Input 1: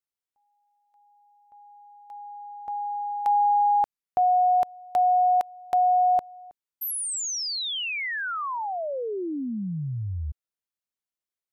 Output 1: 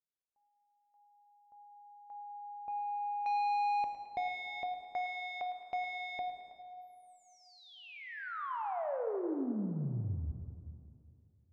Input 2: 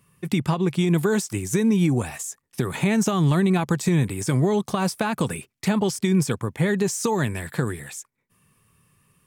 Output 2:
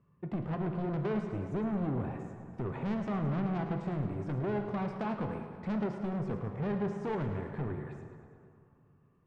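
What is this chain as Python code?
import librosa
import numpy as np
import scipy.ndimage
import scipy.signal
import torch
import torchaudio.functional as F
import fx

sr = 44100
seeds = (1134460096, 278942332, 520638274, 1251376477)

y = scipy.signal.sosfilt(scipy.signal.butter(2, 1000.0, 'lowpass', fs=sr, output='sos'), x)
y = 10.0 ** (-25.5 / 20.0) * np.tanh(y / 10.0 ** (-25.5 / 20.0))
y = fx.echo_thinned(y, sr, ms=108, feedback_pct=63, hz=760.0, wet_db=-11.0)
y = fx.rev_plate(y, sr, seeds[0], rt60_s=2.5, hf_ratio=0.45, predelay_ms=0, drr_db=5.0)
y = y * 10.0 ** (-5.5 / 20.0)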